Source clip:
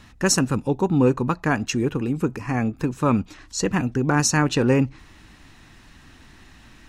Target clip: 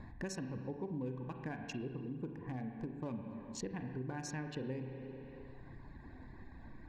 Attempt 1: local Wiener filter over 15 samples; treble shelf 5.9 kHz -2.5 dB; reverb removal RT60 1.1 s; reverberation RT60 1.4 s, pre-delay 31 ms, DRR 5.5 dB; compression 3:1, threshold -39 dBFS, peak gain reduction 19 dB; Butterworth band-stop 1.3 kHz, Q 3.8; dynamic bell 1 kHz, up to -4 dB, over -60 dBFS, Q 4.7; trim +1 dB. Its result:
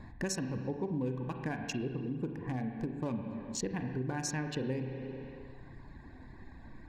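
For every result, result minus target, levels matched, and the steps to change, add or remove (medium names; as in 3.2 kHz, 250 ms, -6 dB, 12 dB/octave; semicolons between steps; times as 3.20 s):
compression: peak gain reduction -6 dB; 8 kHz band +3.5 dB
change: compression 3:1, threshold -48 dBFS, peak gain reduction 25 dB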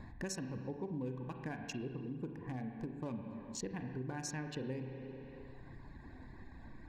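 8 kHz band +3.5 dB
change: treble shelf 5.9 kHz -11.5 dB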